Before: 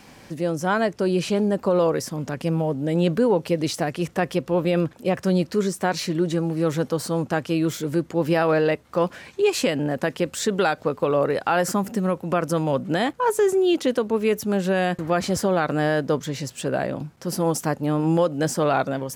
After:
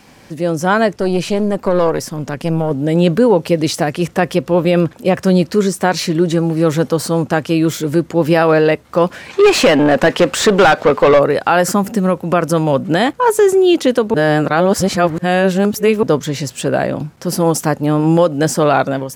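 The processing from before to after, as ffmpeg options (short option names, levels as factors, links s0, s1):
-filter_complex "[0:a]asettb=1/sr,asplit=3[s0][s1][s2];[s0]atrim=end=0.964[s3];[s1]atrim=start=0.96:end=2.71,asetpts=PTS-STARTPTS,afade=t=in:d=0.004:c=qsin,afade=t=out:st=1.746:d=0.004:c=qsin,aeval=exprs='(tanh(5.01*val(0)+0.65)-tanh(0.65))/5.01':c=same[s4];[s2]atrim=start=2.706[s5];[s3][s4]acrossfade=d=0.004:c1=hsin:c2=qsin[s6];[s6][s5]acrossfade=d=0.004:c1=qsin:c2=hsin,asplit=3[s7][s8][s9];[s7]afade=t=out:st=9.29:d=0.02[s10];[s8]asplit=2[s11][s12];[s12]highpass=f=720:p=1,volume=11.2,asoftclip=type=tanh:threshold=0.316[s13];[s11][s13]amix=inputs=2:normalize=0,lowpass=f=2200:p=1,volume=0.501,afade=t=in:st=9.29:d=0.02,afade=t=out:st=11.18:d=0.02[s14];[s9]afade=t=in:st=11.18:d=0.02[s15];[s10][s14][s15]amix=inputs=3:normalize=0,asplit=3[s16][s17][s18];[s16]atrim=end=14.142[s19];[s17]atrim=start=14.138:end=16.032,asetpts=PTS-STARTPTS,areverse[s20];[s18]atrim=start=16.028[s21];[s19][s20]acrossfade=d=0.004:c1=hsin:c2=hsin[s22];[s22][s21]acrossfade=d=0.004:c1=hsin:c2=hsin,dynaudnorm=f=260:g=3:m=2.11,volume=1.33"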